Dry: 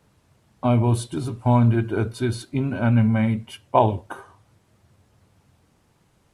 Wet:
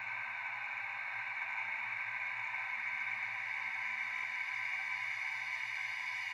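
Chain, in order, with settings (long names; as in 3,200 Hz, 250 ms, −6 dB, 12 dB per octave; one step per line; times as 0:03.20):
inverse Chebyshev high-pass filter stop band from 470 Hz, stop band 50 dB
high-shelf EQ 8,000 Hz −11.5 dB
in parallel at +2.5 dB: compressor whose output falls as the input rises −43 dBFS, ratio −0.5
on the sum: extreme stretch with random phases 15×, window 1.00 s, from 0:02.96
phaser with its sweep stopped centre 2,100 Hz, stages 8
soft clipping −24 dBFS, distortion −31 dB
single-tap delay 1,117 ms −7.5 dB
on a send at −2.5 dB: convolution reverb RT60 1.1 s, pre-delay 58 ms
on the sum: buffer that repeats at 0:04.14, samples 2,048, times 1
level −3.5 dB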